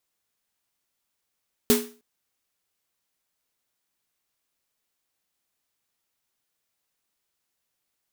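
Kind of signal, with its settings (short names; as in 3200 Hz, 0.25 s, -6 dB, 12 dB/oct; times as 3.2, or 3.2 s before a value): snare drum length 0.31 s, tones 240 Hz, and 420 Hz, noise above 660 Hz, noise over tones -3 dB, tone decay 0.36 s, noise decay 0.34 s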